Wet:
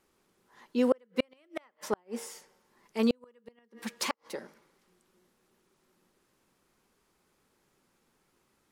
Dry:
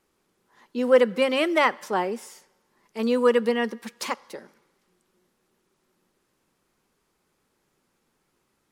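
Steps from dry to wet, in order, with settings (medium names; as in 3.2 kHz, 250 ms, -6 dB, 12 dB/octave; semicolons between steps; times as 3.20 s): de-hum 155 Hz, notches 4; inverted gate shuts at -14 dBFS, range -41 dB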